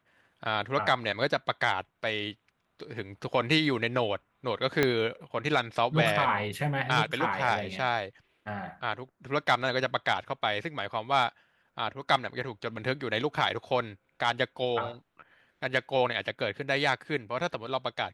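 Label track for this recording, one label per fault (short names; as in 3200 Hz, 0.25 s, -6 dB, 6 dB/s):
4.830000	4.830000	pop -10 dBFS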